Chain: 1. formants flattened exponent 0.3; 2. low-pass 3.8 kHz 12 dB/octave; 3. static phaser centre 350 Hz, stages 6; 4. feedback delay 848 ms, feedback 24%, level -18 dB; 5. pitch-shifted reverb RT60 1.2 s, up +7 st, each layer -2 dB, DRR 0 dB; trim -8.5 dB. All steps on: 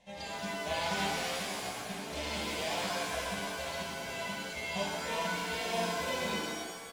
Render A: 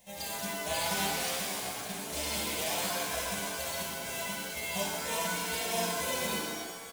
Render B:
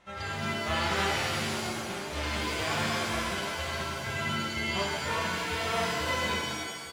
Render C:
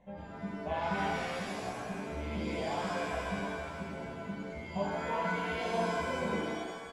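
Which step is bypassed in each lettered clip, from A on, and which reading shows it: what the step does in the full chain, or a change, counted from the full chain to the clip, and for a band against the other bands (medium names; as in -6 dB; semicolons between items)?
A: 2, 8 kHz band +8.0 dB; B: 3, 125 Hz band +4.5 dB; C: 1, 8 kHz band -12.5 dB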